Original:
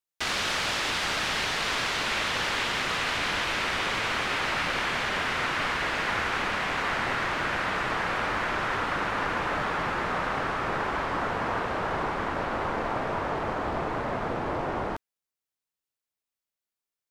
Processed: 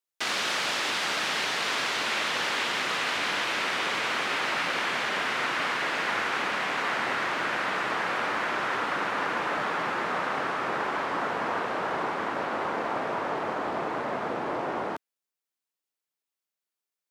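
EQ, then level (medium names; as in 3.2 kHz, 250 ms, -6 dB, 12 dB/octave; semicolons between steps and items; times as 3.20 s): high-pass 210 Hz 12 dB/octave; 0.0 dB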